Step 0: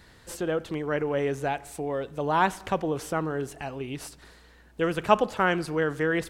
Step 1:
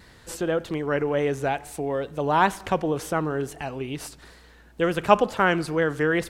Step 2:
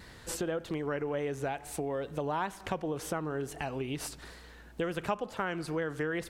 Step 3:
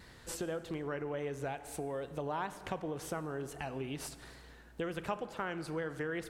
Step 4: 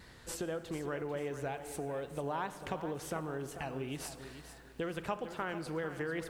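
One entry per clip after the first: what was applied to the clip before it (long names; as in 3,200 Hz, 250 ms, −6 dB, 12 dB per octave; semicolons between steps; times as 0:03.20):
tape wow and flutter 50 cents; level +3 dB
downward compressor 4 to 1, threshold −32 dBFS, peak gain reduction 18.5 dB
dense smooth reverb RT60 2.3 s, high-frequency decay 0.5×, DRR 13 dB; level −4.5 dB
feedback echo at a low word length 444 ms, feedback 35%, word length 10 bits, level −11 dB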